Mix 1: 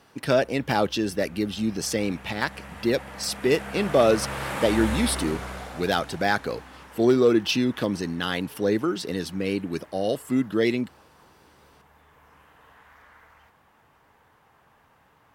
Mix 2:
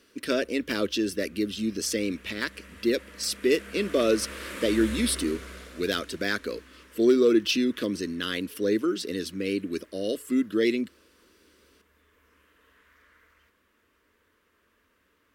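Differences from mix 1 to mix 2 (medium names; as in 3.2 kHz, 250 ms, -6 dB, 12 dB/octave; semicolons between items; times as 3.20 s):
background -3.0 dB; master: add static phaser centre 330 Hz, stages 4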